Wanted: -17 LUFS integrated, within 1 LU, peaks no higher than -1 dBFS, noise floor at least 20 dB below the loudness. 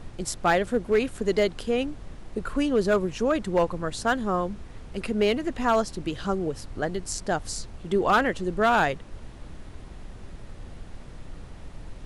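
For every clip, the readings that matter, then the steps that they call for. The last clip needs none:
clipped 0.4%; flat tops at -14.5 dBFS; noise floor -43 dBFS; noise floor target -46 dBFS; loudness -26.0 LUFS; peak -14.5 dBFS; loudness target -17.0 LUFS
-> clip repair -14.5 dBFS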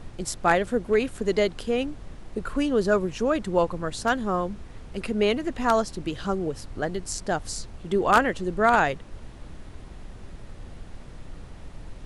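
clipped 0.0%; noise floor -43 dBFS; noise floor target -46 dBFS
-> noise print and reduce 6 dB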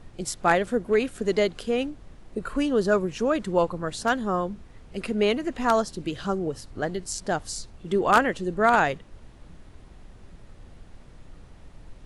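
noise floor -49 dBFS; loudness -25.5 LUFS; peak -5.5 dBFS; loudness target -17.0 LUFS
-> gain +8.5 dB; limiter -1 dBFS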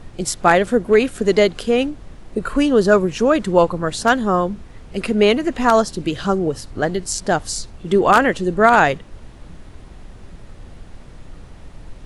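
loudness -17.5 LUFS; peak -1.0 dBFS; noise floor -41 dBFS

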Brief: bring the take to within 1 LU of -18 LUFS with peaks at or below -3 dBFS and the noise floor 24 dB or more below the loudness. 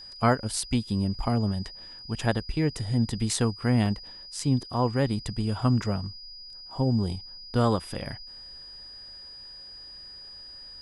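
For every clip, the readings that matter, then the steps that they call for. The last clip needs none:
dropouts 1; longest dropout 1.4 ms; steady tone 4900 Hz; tone level -42 dBFS; loudness -27.5 LUFS; peak -9.5 dBFS; loudness target -18.0 LUFS
-> interpolate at 3.86, 1.4 ms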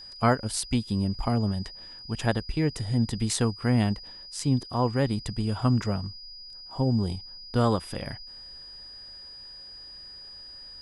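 dropouts 0; steady tone 4900 Hz; tone level -42 dBFS
-> notch 4900 Hz, Q 30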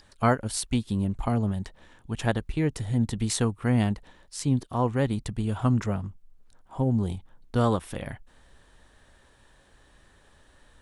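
steady tone none; loudness -27.5 LUFS; peak -9.5 dBFS; loudness target -18.0 LUFS
-> gain +9.5 dB; limiter -3 dBFS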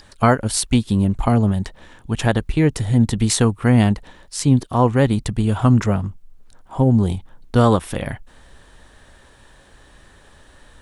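loudness -18.5 LUFS; peak -3.0 dBFS; noise floor -50 dBFS

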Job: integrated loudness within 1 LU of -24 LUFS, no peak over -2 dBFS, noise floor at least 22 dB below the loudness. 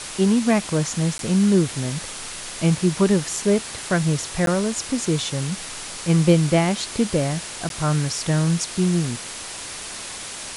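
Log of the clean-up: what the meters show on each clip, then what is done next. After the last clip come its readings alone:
dropouts 3; longest dropout 12 ms; noise floor -34 dBFS; noise floor target -44 dBFS; loudness -22.0 LUFS; peak -5.0 dBFS; loudness target -24.0 LUFS
-> interpolate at 1.18/4.46/7.69, 12 ms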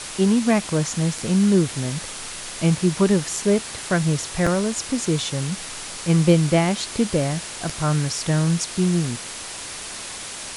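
dropouts 0; noise floor -34 dBFS; noise floor target -44 dBFS
-> denoiser 10 dB, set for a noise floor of -34 dBFS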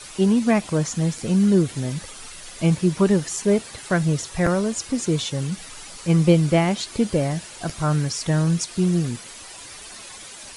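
noise floor -40 dBFS; noise floor target -44 dBFS
-> denoiser 6 dB, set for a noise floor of -40 dBFS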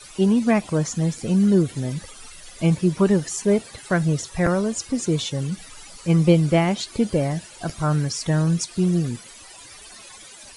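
noise floor -44 dBFS; loudness -21.5 LUFS; peak -5.0 dBFS; loudness target -24.0 LUFS
-> gain -2.5 dB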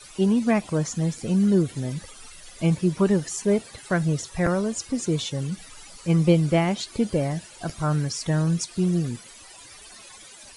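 loudness -24.0 LUFS; peak -7.5 dBFS; noise floor -46 dBFS

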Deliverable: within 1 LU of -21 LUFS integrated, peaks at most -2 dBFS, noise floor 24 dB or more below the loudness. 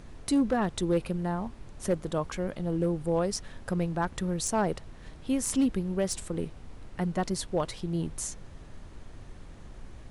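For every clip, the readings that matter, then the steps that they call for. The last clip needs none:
clipped 0.4%; flat tops at -19.0 dBFS; noise floor -47 dBFS; noise floor target -55 dBFS; loudness -30.5 LUFS; peak -19.0 dBFS; loudness target -21.0 LUFS
-> clip repair -19 dBFS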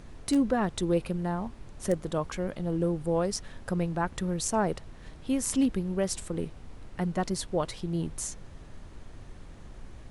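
clipped 0.0%; noise floor -47 dBFS; noise floor target -55 dBFS
-> noise print and reduce 8 dB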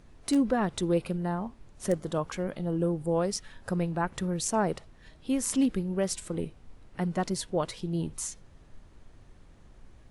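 noise floor -55 dBFS; loudness -30.5 LUFS; peak -12.5 dBFS; loudness target -21.0 LUFS
-> gain +9.5 dB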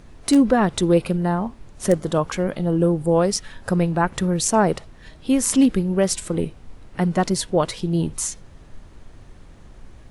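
loudness -21.0 LUFS; peak -3.0 dBFS; noise floor -45 dBFS

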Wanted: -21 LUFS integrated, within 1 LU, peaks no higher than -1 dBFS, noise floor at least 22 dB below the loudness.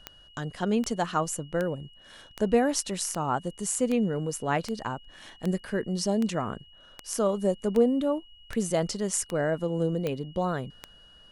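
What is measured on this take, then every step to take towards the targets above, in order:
clicks 15; steady tone 2900 Hz; tone level -53 dBFS; loudness -28.5 LUFS; peak -10.5 dBFS; loudness target -21.0 LUFS
-> de-click; notch 2900 Hz, Q 30; gain +7.5 dB

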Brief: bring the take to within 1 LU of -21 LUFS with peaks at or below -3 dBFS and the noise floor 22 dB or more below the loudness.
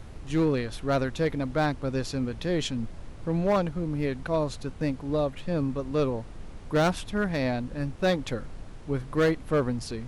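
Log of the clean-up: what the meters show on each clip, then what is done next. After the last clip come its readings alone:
clipped 1.2%; flat tops at -18.0 dBFS; noise floor -43 dBFS; noise floor target -51 dBFS; loudness -28.5 LUFS; peak -18.0 dBFS; loudness target -21.0 LUFS
-> clip repair -18 dBFS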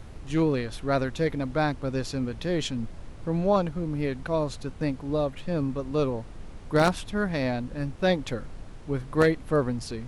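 clipped 0.0%; noise floor -43 dBFS; noise floor target -50 dBFS
-> noise print and reduce 7 dB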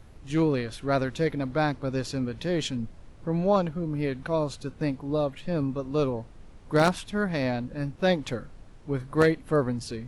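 noise floor -49 dBFS; noise floor target -50 dBFS
-> noise print and reduce 6 dB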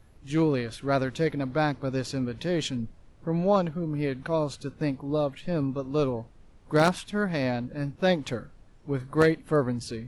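noise floor -54 dBFS; loudness -28.0 LUFS; peak -9.0 dBFS; loudness target -21.0 LUFS
-> gain +7 dB; limiter -3 dBFS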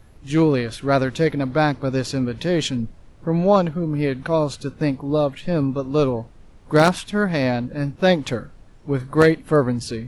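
loudness -21.0 LUFS; peak -3.0 dBFS; noise floor -47 dBFS

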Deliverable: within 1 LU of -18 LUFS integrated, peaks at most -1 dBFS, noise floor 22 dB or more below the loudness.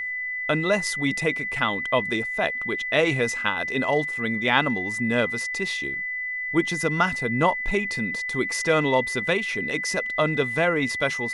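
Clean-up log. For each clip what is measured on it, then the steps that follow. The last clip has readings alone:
steady tone 2000 Hz; tone level -27 dBFS; loudness -24.0 LUFS; peak -4.0 dBFS; loudness target -18.0 LUFS
-> notch 2000 Hz, Q 30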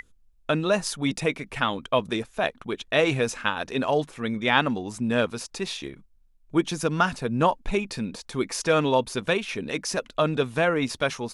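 steady tone none; loudness -26.0 LUFS; peak -5.0 dBFS; loudness target -18.0 LUFS
-> gain +8 dB; limiter -1 dBFS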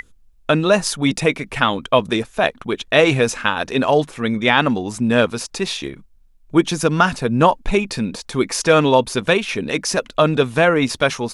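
loudness -18.0 LUFS; peak -1.0 dBFS; noise floor -50 dBFS

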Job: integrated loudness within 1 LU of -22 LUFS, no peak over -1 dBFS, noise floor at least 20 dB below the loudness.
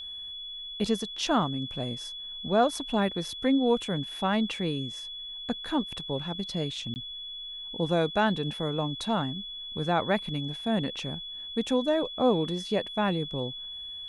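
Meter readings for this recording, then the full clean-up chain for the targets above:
dropouts 1; longest dropout 19 ms; steady tone 3400 Hz; tone level -37 dBFS; loudness -29.5 LUFS; peak -11.0 dBFS; loudness target -22.0 LUFS
-> interpolate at 6.94, 19 ms; notch 3400 Hz, Q 30; gain +7.5 dB

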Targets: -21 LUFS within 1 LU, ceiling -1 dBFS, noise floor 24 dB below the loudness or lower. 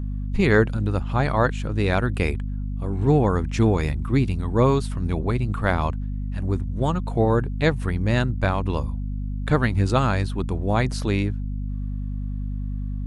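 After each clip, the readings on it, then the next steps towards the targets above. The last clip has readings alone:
hum 50 Hz; harmonics up to 250 Hz; hum level -25 dBFS; loudness -23.5 LUFS; peak -5.0 dBFS; loudness target -21.0 LUFS
-> notches 50/100/150/200/250 Hz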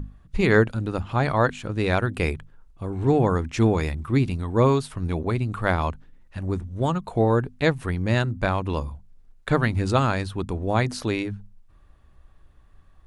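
hum none; loudness -24.0 LUFS; peak -4.5 dBFS; loudness target -21.0 LUFS
-> gain +3 dB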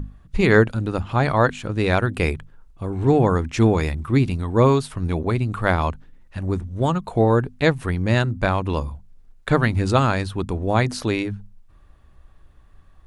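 loudness -21.0 LUFS; peak -1.5 dBFS; noise floor -51 dBFS

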